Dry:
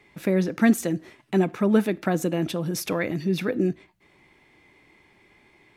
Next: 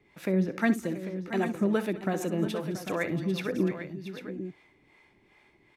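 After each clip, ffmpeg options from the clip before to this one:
ffmpeg -i in.wav -filter_complex "[0:a]highshelf=frequency=7000:gain=-5,acrossover=split=460[link_01][link_02];[link_01]aeval=exprs='val(0)*(1-0.7/2+0.7/2*cos(2*PI*2.5*n/s))':channel_layout=same[link_03];[link_02]aeval=exprs='val(0)*(1-0.7/2-0.7/2*cos(2*PI*2.5*n/s))':channel_layout=same[link_04];[link_03][link_04]amix=inputs=2:normalize=0,asplit=2[link_05][link_06];[link_06]aecho=0:1:63|211|681|796:0.211|0.1|0.237|0.299[link_07];[link_05][link_07]amix=inputs=2:normalize=0,volume=-2dB" out.wav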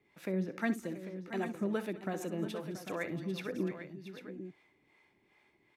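ffmpeg -i in.wav -af "lowshelf=frequency=72:gain=-10.5,volume=-7dB" out.wav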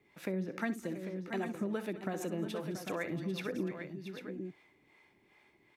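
ffmpeg -i in.wav -af "acompressor=threshold=-36dB:ratio=3,volume=3dB" out.wav

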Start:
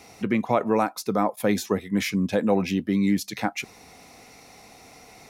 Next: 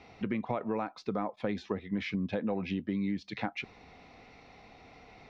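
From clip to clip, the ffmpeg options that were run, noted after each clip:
ffmpeg -i in.wav -af "lowpass=frequency=3900:width=0.5412,lowpass=frequency=3900:width=1.3066,lowshelf=frequency=66:gain=9.5,acompressor=threshold=-24dB:ratio=5,volume=-5dB" out.wav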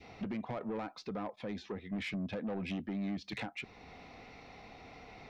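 ffmpeg -i in.wav -af "adynamicequalizer=threshold=0.00562:dfrequency=1000:dqfactor=0.94:tfrequency=1000:tqfactor=0.94:attack=5:release=100:ratio=0.375:range=2:mode=cutabove:tftype=bell,alimiter=level_in=1.5dB:limit=-24dB:level=0:latency=1:release=467,volume=-1.5dB,asoftclip=type=tanh:threshold=-34dB,volume=2dB" out.wav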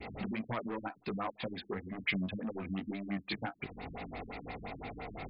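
ffmpeg -i in.wav -filter_complex "[0:a]acrossover=split=1100[link_01][link_02];[link_01]acompressor=threshold=-47dB:ratio=6[link_03];[link_03][link_02]amix=inputs=2:normalize=0,flanger=delay=17:depth=4.7:speed=2,afftfilt=real='re*lt(b*sr/1024,300*pow(5200/300,0.5+0.5*sin(2*PI*5.8*pts/sr)))':imag='im*lt(b*sr/1024,300*pow(5200/300,0.5+0.5*sin(2*PI*5.8*pts/sr)))':win_size=1024:overlap=0.75,volume=13.5dB" out.wav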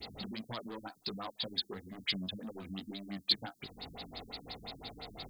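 ffmpeg -i in.wav -af "aexciter=amount=10.6:drive=8.6:freq=3700,volume=-5.5dB" out.wav

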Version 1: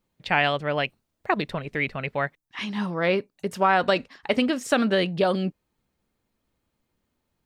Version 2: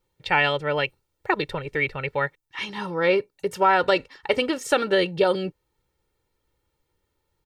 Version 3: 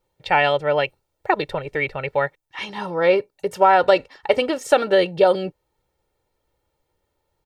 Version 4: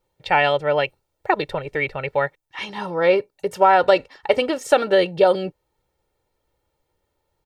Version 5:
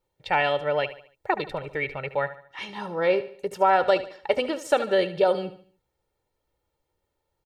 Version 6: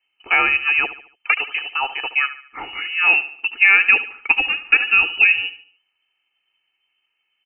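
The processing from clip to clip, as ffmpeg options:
ffmpeg -i in.wav -af "aecho=1:1:2.2:0.73" out.wav
ffmpeg -i in.wav -af "equalizer=frequency=670:width_type=o:width=0.68:gain=10" out.wav
ffmpeg -i in.wav -af anull out.wav
ffmpeg -i in.wav -af "aecho=1:1:73|146|219|292:0.2|0.0818|0.0335|0.0138,volume=-5.5dB" out.wav
ffmpeg -i in.wav -af "lowpass=frequency=2600:width_type=q:width=0.5098,lowpass=frequency=2600:width_type=q:width=0.6013,lowpass=frequency=2600:width_type=q:width=0.9,lowpass=frequency=2600:width_type=q:width=2.563,afreqshift=-3100,volume=6.5dB" out.wav

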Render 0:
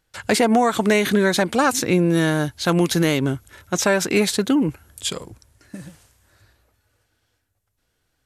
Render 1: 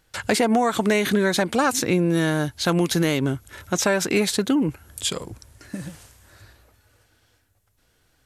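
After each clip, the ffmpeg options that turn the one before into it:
ffmpeg -i in.wav -af "acompressor=threshold=-41dB:ratio=1.5,volume=7dB" out.wav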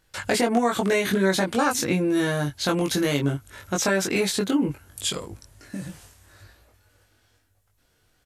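ffmpeg -i in.wav -filter_complex "[0:a]asplit=2[link_01][link_02];[link_02]adelay=21,volume=-2.5dB[link_03];[link_01][link_03]amix=inputs=2:normalize=0,volume=-3.5dB" out.wav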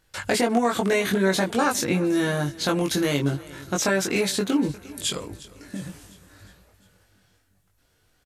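ffmpeg -i in.wav -af "aecho=1:1:354|708|1062|1416|1770:0.1|0.057|0.0325|0.0185|0.0106" out.wav

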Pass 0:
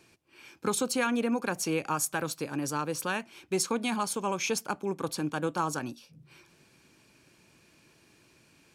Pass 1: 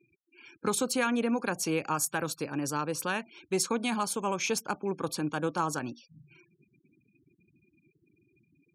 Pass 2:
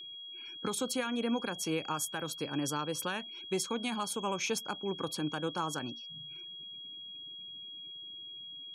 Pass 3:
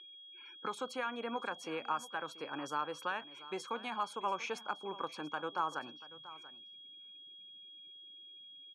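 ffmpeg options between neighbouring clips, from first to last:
ffmpeg -i in.wav -af "afftfilt=real='re*gte(hypot(re,im),0.00316)':imag='im*gte(hypot(re,im),0.00316)':win_size=1024:overlap=0.75" out.wav
ffmpeg -i in.wav -af "alimiter=limit=-21.5dB:level=0:latency=1:release=395,aeval=exprs='val(0)+0.00794*sin(2*PI*3300*n/s)':channel_layout=same,volume=-1.5dB" out.wav
ffmpeg -i in.wav -af "bandpass=frequency=1100:width_type=q:width=1.1:csg=0,aecho=1:1:686:0.141,volume=2dB" out.wav

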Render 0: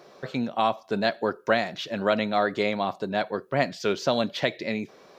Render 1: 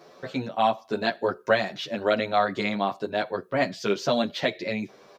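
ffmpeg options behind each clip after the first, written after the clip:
ffmpeg -i in.wav -filter_complex "[0:a]asplit=2[link_01][link_02];[link_02]adelay=9.4,afreqshift=0.93[link_03];[link_01][link_03]amix=inputs=2:normalize=1,volume=3dB" out.wav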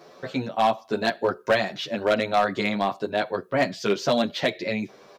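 ffmpeg -i in.wav -af "asoftclip=type=hard:threshold=-15.5dB,volume=2dB" out.wav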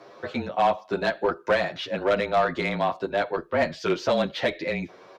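ffmpeg -i in.wav -filter_complex "[0:a]asplit=2[link_01][link_02];[link_02]highpass=frequency=720:poles=1,volume=9dB,asoftclip=type=tanh:threshold=-13dB[link_03];[link_01][link_03]amix=inputs=2:normalize=0,lowpass=frequency=1800:poles=1,volume=-6dB,afreqshift=-28" out.wav

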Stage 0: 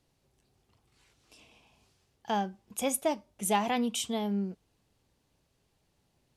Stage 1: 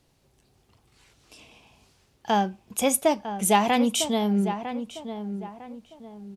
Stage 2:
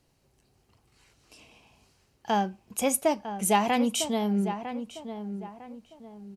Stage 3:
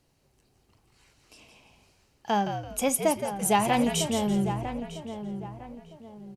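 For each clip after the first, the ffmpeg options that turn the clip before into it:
ffmpeg -i in.wav -filter_complex "[0:a]asplit=2[link_01][link_02];[link_02]adelay=953,lowpass=frequency=1800:poles=1,volume=-9.5dB,asplit=2[link_03][link_04];[link_04]adelay=953,lowpass=frequency=1800:poles=1,volume=0.35,asplit=2[link_05][link_06];[link_06]adelay=953,lowpass=frequency=1800:poles=1,volume=0.35,asplit=2[link_07][link_08];[link_08]adelay=953,lowpass=frequency=1800:poles=1,volume=0.35[link_09];[link_01][link_03][link_05][link_07][link_09]amix=inputs=5:normalize=0,volume=7.5dB" out.wav
ffmpeg -i in.wav -af "bandreject=frequency=3500:width=11,volume=-3dB" out.wav
ffmpeg -i in.wav -filter_complex "[0:a]asplit=5[link_01][link_02][link_03][link_04][link_05];[link_02]adelay=168,afreqshift=-74,volume=-8dB[link_06];[link_03]adelay=336,afreqshift=-148,volume=-17.9dB[link_07];[link_04]adelay=504,afreqshift=-222,volume=-27.8dB[link_08];[link_05]adelay=672,afreqshift=-296,volume=-37.7dB[link_09];[link_01][link_06][link_07][link_08][link_09]amix=inputs=5:normalize=0" out.wav

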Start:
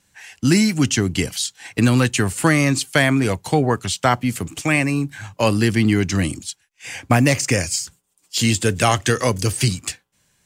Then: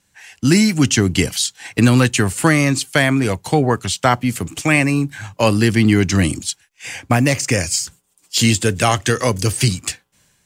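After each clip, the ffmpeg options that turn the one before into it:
ffmpeg -i in.wav -af "dynaudnorm=framelen=110:gausssize=7:maxgain=13dB,volume=-1dB" out.wav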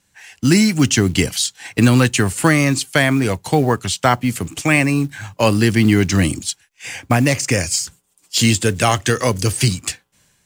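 ffmpeg -i in.wav -af "acrusher=bits=7:mode=log:mix=0:aa=0.000001" out.wav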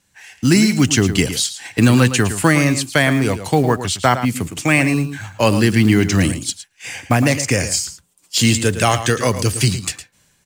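ffmpeg -i in.wav -filter_complex "[0:a]asplit=2[link_01][link_02];[link_02]adelay=110.8,volume=-11dB,highshelf=frequency=4000:gain=-2.49[link_03];[link_01][link_03]amix=inputs=2:normalize=0" out.wav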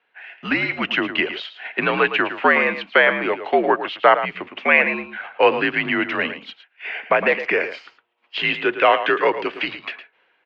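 ffmpeg -i in.wav -af "highpass=frequency=450:width_type=q:width=0.5412,highpass=frequency=450:width_type=q:width=1.307,lowpass=frequency=3000:width_type=q:width=0.5176,lowpass=frequency=3000:width_type=q:width=0.7071,lowpass=frequency=3000:width_type=q:width=1.932,afreqshift=-69,volume=2.5dB" out.wav

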